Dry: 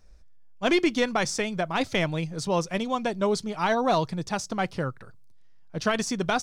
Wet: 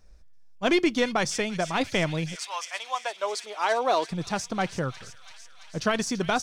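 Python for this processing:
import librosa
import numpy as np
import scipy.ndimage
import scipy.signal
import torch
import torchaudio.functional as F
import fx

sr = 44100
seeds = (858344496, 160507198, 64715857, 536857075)

p1 = fx.highpass(x, sr, hz=fx.line((2.34, 1100.0), (4.1, 290.0)), slope=24, at=(2.34, 4.1), fade=0.02)
y = p1 + fx.echo_wet_highpass(p1, sr, ms=335, feedback_pct=76, hz=2800.0, wet_db=-10, dry=0)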